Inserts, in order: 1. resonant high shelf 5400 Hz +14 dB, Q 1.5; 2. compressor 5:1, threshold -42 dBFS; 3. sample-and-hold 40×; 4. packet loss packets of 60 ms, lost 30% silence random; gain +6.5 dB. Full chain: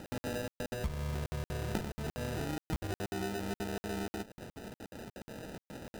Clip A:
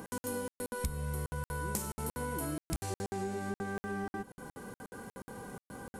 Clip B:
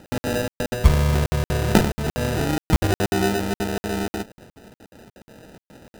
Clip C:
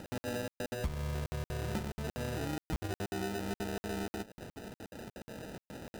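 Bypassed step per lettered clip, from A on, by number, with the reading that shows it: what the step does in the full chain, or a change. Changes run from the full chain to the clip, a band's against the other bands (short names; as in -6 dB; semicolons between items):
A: 3, crest factor change +5.5 dB; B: 2, mean gain reduction 13.5 dB; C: 1, crest factor change -2.5 dB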